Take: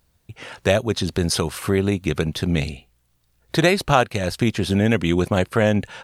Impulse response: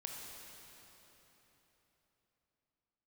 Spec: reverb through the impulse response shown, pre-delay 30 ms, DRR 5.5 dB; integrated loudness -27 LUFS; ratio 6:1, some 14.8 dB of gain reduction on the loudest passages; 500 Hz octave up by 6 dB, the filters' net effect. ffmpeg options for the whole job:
-filter_complex "[0:a]equalizer=f=500:t=o:g=7.5,acompressor=threshold=0.0631:ratio=6,asplit=2[s0][s1];[1:a]atrim=start_sample=2205,adelay=30[s2];[s1][s2]afir=irnorm=-1:irlink=0,volume=0.631[s3];[s0][s3]amix=inputs=2:normalize=0,volume=1.12"

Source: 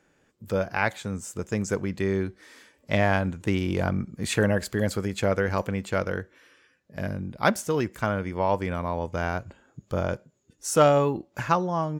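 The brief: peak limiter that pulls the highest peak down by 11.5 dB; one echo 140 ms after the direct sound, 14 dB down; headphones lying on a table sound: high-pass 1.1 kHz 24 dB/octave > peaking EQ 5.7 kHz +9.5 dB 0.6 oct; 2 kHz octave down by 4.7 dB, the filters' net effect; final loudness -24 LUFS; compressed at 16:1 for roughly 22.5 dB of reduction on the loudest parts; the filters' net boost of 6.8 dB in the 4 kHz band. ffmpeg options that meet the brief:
-af "equalizer=f=2000:t=o:g=-8,equalizer=f=4000:t=o:g=6.5,acompressor=threshold=0.0141:ratio=16,alimiter=level_in=3.16:limit=0.0631:level=0:latency=1,volume=0.316,highpass=f=1100:w=0.5412,highpass=f=1100:w=1.3066,equalizer=f=5700:t=o:w=0.6:g=9.5,aecho=1:1:140:0.2,volume=15"

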